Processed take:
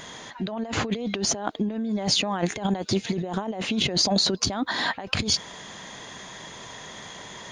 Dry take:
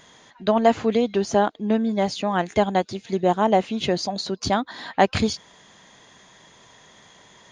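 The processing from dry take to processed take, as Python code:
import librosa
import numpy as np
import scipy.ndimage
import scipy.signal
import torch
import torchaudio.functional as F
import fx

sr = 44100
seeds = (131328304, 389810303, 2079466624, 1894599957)

y = fx.over_compress(x, sr, threshold_db=-30.0, ratio=-1.0)
y = F.gain(torch.from_numpy(y), 3.0).numpy()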